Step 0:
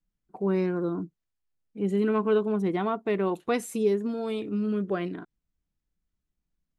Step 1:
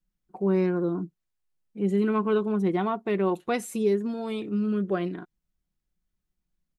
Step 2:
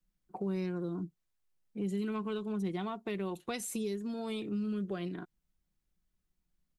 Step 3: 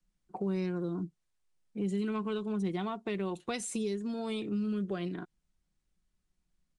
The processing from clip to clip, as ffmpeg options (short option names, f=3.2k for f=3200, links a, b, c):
-af "aecho=1:1:5.5:0.33"
-filter_complex "[0:a]acrossover=split=130|3000[a][b][c];[b]acompressor=threshold=-36dB:ratio=6[d];[a][d][c]amix=inputs=3:normalize=0"
-af "aresample=22050,aresample=44100,volume=2dB"